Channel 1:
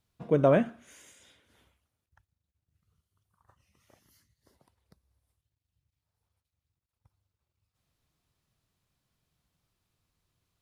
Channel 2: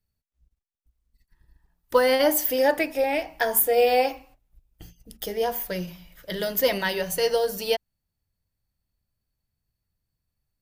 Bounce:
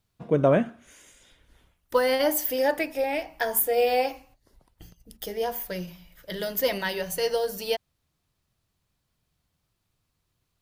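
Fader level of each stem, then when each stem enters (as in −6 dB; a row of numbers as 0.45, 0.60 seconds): +2.0, −3.0 decibels; 0.00, 0.00 seconds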